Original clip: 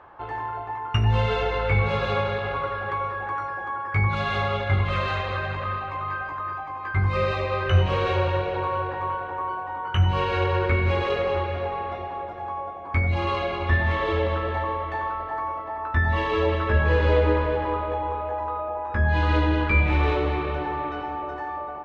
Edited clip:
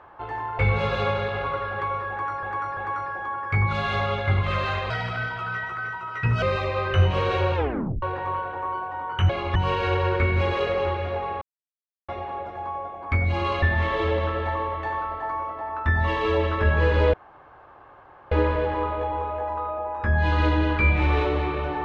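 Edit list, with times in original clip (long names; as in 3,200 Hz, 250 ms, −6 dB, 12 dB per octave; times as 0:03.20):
0:00.59–0:01.69: remove
0:03.19–0:03.53: repeat, 3 plays
0:05.32–0:07.18: play speed 122%
0:08.31: tape stop 0.47 s
0:11.91: splice in silence 0.67 s
0:13.45–0:13.71: move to 0:10.05
0:17.22: splice in room tone 1.18 s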